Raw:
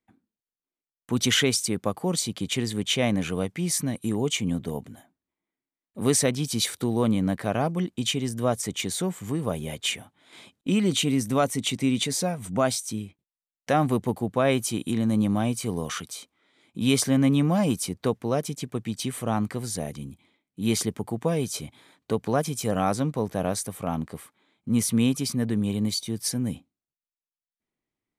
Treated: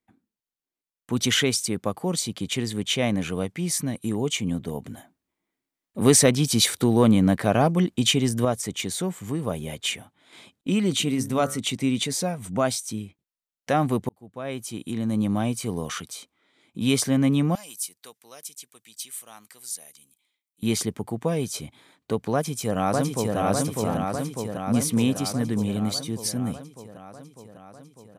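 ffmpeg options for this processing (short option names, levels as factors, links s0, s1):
-filter_complex "[0:a]asettb=1/sr,asplit=3[s0][s1][s2];[s0]atrim=end=4.844[s3];[s1]atrim=start=4.84:end=8.45,asetpts=PTS-STARTPTS,afade=t=in:d=0.004:c=qsin,afade=t=out:st=3.606:d=0.004:c=qsin,acontrast=47[s4];[s2]atrim=start=8.446[s5];[s3][s4]acrossfade=d=0.004:c1=hsin:c2=qsin[s6];[s6][s5]acrossfade=d=0.004:c1=qsin:c2=hsin,asplit=3[s7][s8][s9];[s7]afade=t=out:st=10.99:d=0.02[s10];[s8]bandreject=f=68.86:t=h:w=4,bandreject=f=137.72:t=h:w=4,bandreject=f=206.58:t=h:w=4,bandreject=f=275.44:t=h:w=4,bandreject=f=344.3:t=h:w=4,bandreject=f=413.16:t=h:w=4,bandreject=f=482.02:t=h:w=4,bandreject=f=550.88:t=h:w=4,bandreject=f=619.74:t=h:w=4,bandreject=f=688.6:t=h:w=4,bandreject=f=757.46:t=h:w=4,bandreject=f=826.32:t=h:w=4,bandreject=f=895.18:t=h:w=4,bandreject=f=964.04:t=h:w=4,bandreject=f=1032.9:t=h:w=4,bandreject=f=1101.76:t=h:w=4,bandreject=f=1170.62:t=h:w=4,bandreject=f=1239.48:t=h:w=4,bandreject=f=1308.34:t=h:w=4,bandreject=f=1377.2:t=h:w=4,bandreject=f=1446.06:t=h:w=4,bandreject=f=1514.92:t=h:w=4,bandreject=f=1583.78:t=h:w=4,bandreject=f=1652.64:t=h:w=4,bandreject=f=1721.5:t=h:w=4,bandreject=f=1790.36:t=h:w=4,bandreject=f=1859.22:t=h:w=4,afade=t=in:st=10.99:d=0.02,afade=t=out:st=11.58:d=0.02[s11];[s9]afade=t=in:st=11.58:d=0.02[s12];[s10][s11][s12]amix=inputs=3:normalize=0,asettb=1/sr,asplit=3[s13][s14][s15];[s13]atrim=end=17.554[s16];[s14]atrim=start=17.55:end=20.63,asetpts=PTS-STARTPTS,afade=t=in:d=0.004:c=qsin,afade=t=out:st=3.076:d=0.004:c=qsin,aderivative[s17];[s15]atrim=start=20.626[s18];[s16][s17]acrossfade=d=0.004:c1=hsin:c2=qsin[s19];[s19][s18]acrossfade=d=0.004:c1=qsin:c2=hsin,asplit=2[s20][s21];[s21]afade=t=in:st=22.33:d=0.01,afade=t=out:st=23.37:d=0.01,aecho=0:1:600|1200|1800|2400|3000|3600|4200|4800|5400|6000|6600|7200:0.841395|0.588977|0.412284|0.288599|0.202019|0.141413|0.0989893|0.0692925|0.0485048|0.0339533|0.0237673|0.0166371[s22];[s20][s22]amix=inputs=2:normalize=0,asplit=2[s23][s24];[s23]atrim=end=14.09,asetpts=PTS-STARTPTS,afade=t=out:st=14.086:d=0.004:c=hsin[s25];[s24]atrim=start=14.09,asetpts=PTS-STARTPTS,afade=t=in:d=1.26[s26];[s25][s26]concat=n=2:v=0:a=1"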